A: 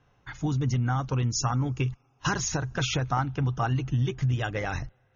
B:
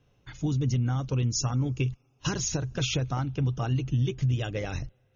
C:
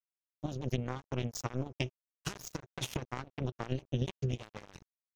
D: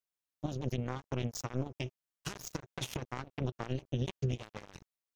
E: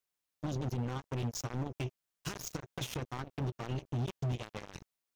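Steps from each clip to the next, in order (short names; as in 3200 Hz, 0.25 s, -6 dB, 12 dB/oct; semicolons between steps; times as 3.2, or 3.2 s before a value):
band shelf 1200 Hz -8.5 dB
power-law curve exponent 3; crossover distortion -55 dBFS; gain +1.5 dB
limiter -22 dBFS, peak gain reduction 6.5 dB; gain +1 dB
hard clip -32.5 dBFS, distortion -7 dB; gain +4 dB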